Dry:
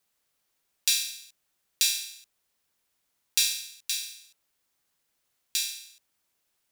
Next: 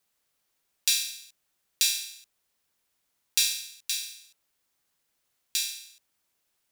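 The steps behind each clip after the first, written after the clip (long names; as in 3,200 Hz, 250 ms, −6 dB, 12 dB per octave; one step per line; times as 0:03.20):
no processing that can be heard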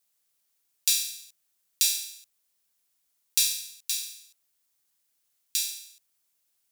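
high-shelf EQ 3,900 Hz +11.5 dB
level −7.5 dB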